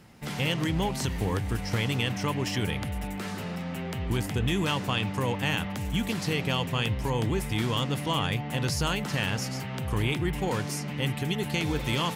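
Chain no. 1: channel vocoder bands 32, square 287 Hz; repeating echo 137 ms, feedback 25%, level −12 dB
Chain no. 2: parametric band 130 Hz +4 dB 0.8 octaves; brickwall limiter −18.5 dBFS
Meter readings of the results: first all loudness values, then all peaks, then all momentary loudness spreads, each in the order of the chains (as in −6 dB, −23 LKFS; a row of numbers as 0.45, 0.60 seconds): −31.0, −29.0 LKFS; −16.0, −18.5 dBFS; 8, 4 LU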